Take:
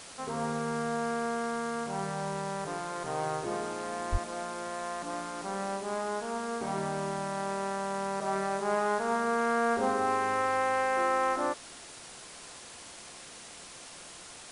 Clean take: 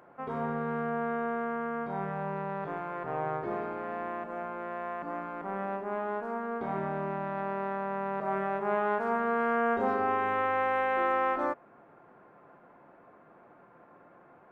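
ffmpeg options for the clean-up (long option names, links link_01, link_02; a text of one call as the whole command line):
ffmpeg -i in.wav -filter_complex "[0:a]asplit=3[link_01][link_02][link_03];[link_01]afade=type=out:start_time=4.11:duration=0.02[link_04];[link_02]highpass=frequency=140:width=0.5412,highpass=frequency=140:width=1.3066,afade=type=in:start_time=4.11:duration=0.02,afade=type=out:start_time=4.23:duration=0.02[link_05];[link_03]afade=type=in:start_time=4.23:duration=0.02[link_06];[link_04][link_05][link_06]amix=inputs=3:normalize=0,afwtdn=0.0056" out.wav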